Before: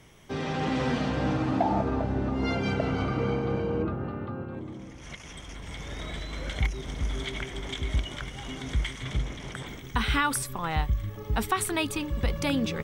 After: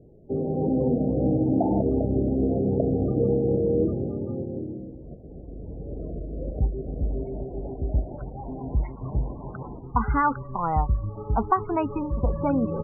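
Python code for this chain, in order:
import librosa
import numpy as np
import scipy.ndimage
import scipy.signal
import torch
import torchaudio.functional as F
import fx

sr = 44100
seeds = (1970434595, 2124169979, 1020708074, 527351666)

y = fx.filter_sweep_lowpass(x, sr, from_hz=460.0, to_hz=990.0, start_s=6.33, end_s=9.46, q=1.7)
y = fx.spec_topn(y, sr, count=32)
y = y * librosa.db_to_amplitude(3.0)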